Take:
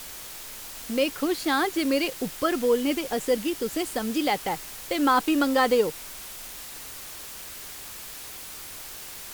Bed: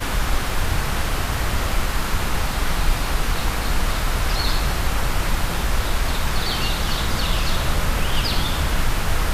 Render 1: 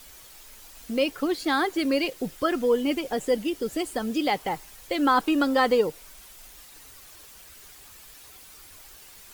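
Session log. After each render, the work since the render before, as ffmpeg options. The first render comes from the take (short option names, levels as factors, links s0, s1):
-af "afftdn=nr=10:nf=-40"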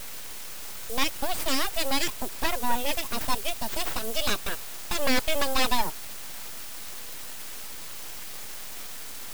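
-af "aexciter=amount=1.9:drive=8.1:freq=2900,aeval=exprs='abs(val(0))':c=same"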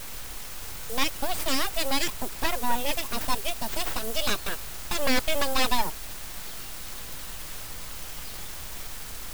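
-filter_complex "[1:a]volume=0.0631[s0];[0:a][s0]amix=inputs=2:normalize=0"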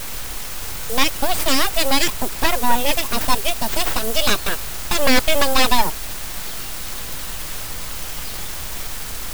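-af "volume=2.82,alimiter=limit=0.794:level=0:latency=1"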